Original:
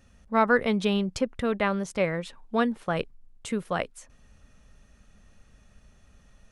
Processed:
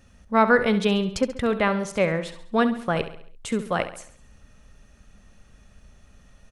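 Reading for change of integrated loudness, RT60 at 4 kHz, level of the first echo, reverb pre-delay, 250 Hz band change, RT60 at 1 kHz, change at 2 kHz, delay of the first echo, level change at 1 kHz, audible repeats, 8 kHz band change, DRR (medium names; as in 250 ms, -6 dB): +3.5 dB, no reverb, -12.0 dB, no reverb, +3.5 dB, no reverb, +4.0 dB, 68 ms, +4.0 dB, 4, +4.0 dB, no reverb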